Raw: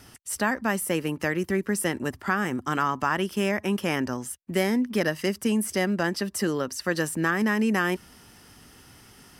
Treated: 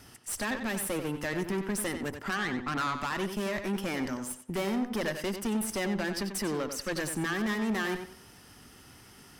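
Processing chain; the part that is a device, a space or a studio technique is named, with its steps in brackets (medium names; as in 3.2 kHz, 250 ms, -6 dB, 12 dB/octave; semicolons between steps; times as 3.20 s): 2.32–2.98 s: resonant high shelf 3 kHz -12 dB, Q 3; rockabilly slapback (valve stage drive 27 dB, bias 0.55; tape echo 92 ms, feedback 30%, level -7 dB, low-pass 5.2 kHz)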